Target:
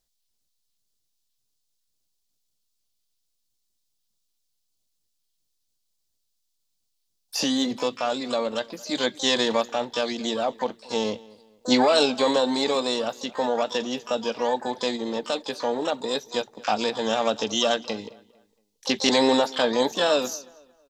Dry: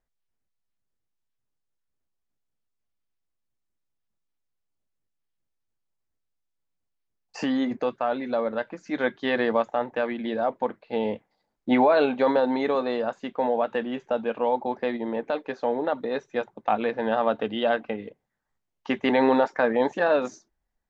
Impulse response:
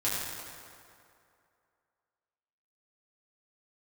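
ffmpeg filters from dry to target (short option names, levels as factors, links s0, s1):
-filter_complex "[0:a]asplit=2[s0][s1];[s1]asetrate=88200,aresample=44100,atempo=0.5,volume=0.251[s2];[s0][s2]amix=inputs=2:normalize=0,highshelf=f=2800:t=q:w=1.5:g=13.5,asplit=2[s3][s4];[s4]adelay=227,lowpass=f=3500:p=1,volume=0.0794,asplit=2[s5][s6];[s6]adelay=227,lowpass=f=3500:p=1,volume=0.36,asplit=2[s7][s8];[s8]adelay=227,lowpass=f=3500:p=1,volume=0.36[s9];[s3][s5][s7][s9]amix=inputs=4:normalize=0"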